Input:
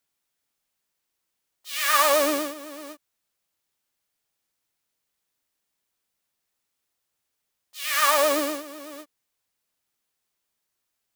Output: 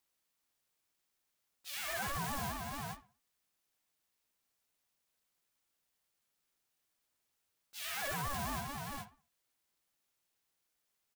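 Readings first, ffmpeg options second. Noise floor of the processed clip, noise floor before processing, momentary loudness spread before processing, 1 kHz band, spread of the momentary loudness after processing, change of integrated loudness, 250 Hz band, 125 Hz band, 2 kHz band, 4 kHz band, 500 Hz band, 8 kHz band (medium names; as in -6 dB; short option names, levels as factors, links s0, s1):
-83 dBFS, -80 dBFS, 21 LU, -15.0 dB, 14 LU, -17.0 dB, -13.5 dB, no reading, -14.0 dB, -15.5 dB, -22.0 dB, -15.5 dB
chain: -filter_complex "[0:a]areverse,acompressor=threshold=0.0316:ratio=6,areverse,asplit=2[s0][s1];[s1]adelay=61,lowpass=f=2400:p=1,volume=0.237,asplit=2[s2][s3];[s3]adelay=61,lowpass=f=2400:p=1,volume=0.35,asplit=2[s4][s5];[s5]adelay=61,lowpass=f=2400:p=1,volume=0.35,asplit=2[s6][s7];[s7]adelay=61,lowpass=f=2400:p=1,volume=0.35[s8];[s0][s2][s4][s6][s8]amix=inputs=5:normalize=0,asoftclip=type=hard:threshold=0.0266,aeval=exprs='val(0)*sin(2*PI*480*n/s+480*0.2/4.7*sin(2*PI*4.7*n/s))':c=same"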